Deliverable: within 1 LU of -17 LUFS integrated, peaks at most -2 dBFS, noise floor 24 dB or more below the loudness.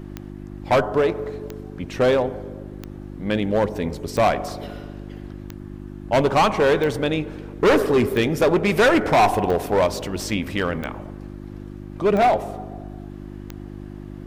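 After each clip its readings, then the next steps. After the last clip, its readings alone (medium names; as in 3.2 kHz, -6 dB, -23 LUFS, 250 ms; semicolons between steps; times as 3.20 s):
clicks found 11; hum 50 Hz; highest harmonic 350 Hz; hum level -33 dBFS; loudness -20.5 LUFS; peak level -9.0 dBFS; loudness target -17.0 LUFS
-> de-click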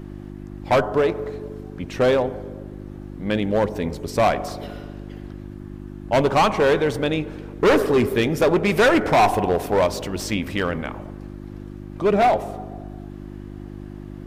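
clicks found 0; hum 50 Hz; highest harmonic 350 Hz; hum level -33 dBFS
-> de-hum 50 Hz, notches 7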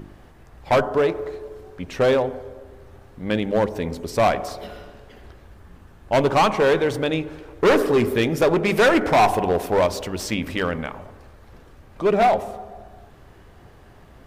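hum not found; loudness -20.5 LUFS; peak level -8.5 dBFS; loudness target -17.0 LUFS
-> trim +3.5 dB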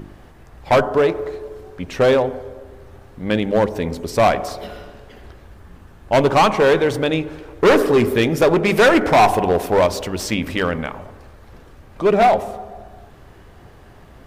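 loudness -17.0 LUFS; peak level -5.0 dBFS; noise floor -45 dBFS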